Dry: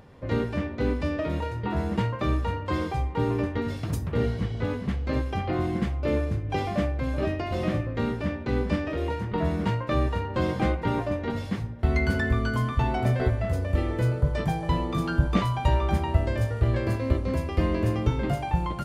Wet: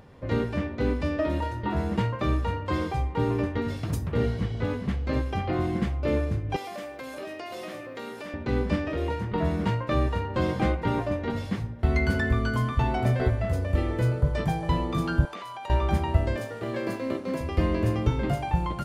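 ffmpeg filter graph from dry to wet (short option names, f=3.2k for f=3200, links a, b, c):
-filter_complex "[0:a]asettb=1/sr,asplit=3[a][b][c];[a]atrim=end=1.194[d];[b]atrim=start=1.19:end=1.7,asetpts=PTS-STARTPTS,afade=t=in:d=0.004:c=qsin,afade=t=out:st=0.506:d=0.004:c=qsin,bandreject=f=2.3k:w=10,aecho=1:1:3.3:0.53,atrim=end_sample=22491[e];[c]atrim=start=1.696[f];[d][e]acrossfade=d=0.004:c1=hsin:c2=qsin[g];[g][f]acrossfade=d=0.004:c1=qsin:c2=hsin,asettb=1/sr,asplit=3[h][i][j];[h]atrim=end=6.564[k];[i]atrim=start=6.56:end=8.34,asetpts=PTS-STARTPTS,afade=t=in:d=0.004:c=qsin,afade=t=out:st=1.776:d=0.004:c=qsin,highpass=380,aemphasis=mode=production:type=50kf,acompressor=threshold=-35dB:ratio=3:attack=3.2:release=140:knee=1:detection=peak[l];[j]atrim=start=8.336[m];[k][l]acrossfade=d=0.004:c1=hsin:c2=qsin[n];[n][m]acrossfade=d=0.004:c1=qsin:c2=hsin,asettb=1/sr,asplit=3[o][p][q];[o]atrim=end=15.254[r];[p]atrim=start=15.25:end=15.7,asetpts=PTS-STARTPTS,afade=t=in:d=0.004:c=qsin,afade=t=out:st=0.446:d=0.004:c=qsin,highpass=510,acompressor=threshold=-35dB:ratio=6:attack=3.2:release=140:knee=1:detection=peak[s];[q]atrim=start=15.696[t];[r][s]acrossfade=d=0.004:c1=hsin:c2=qsin[u];[u][t]acrossfade=d=0.004:c1=qsin:c2=hsin,asettb=1/sr,asplit=3[v][w][x];[v]atrim=end=16.364[y];[w]atrim=start=16.36:end=17.41,asetpts=PTS-STARTPTS,afade=t=in:d=0.004:c=qsin,afade=t=out:st=1.046:d=0.004:c=qsin,highpass=f=170:w=0.5412,highpass=f=170:w=1.3066,aeval=exprs='sgn(val(0))*max(abs(val(0))-0.00251,0)':c=same[z];[x]atrim=start=17.406[aa];[y][z]acrossfade=d=0.004:c1=hsin:c2=qsin[ab];[ab][aa]acrossfade=d=0.004:c1=qsin:c2=hsin"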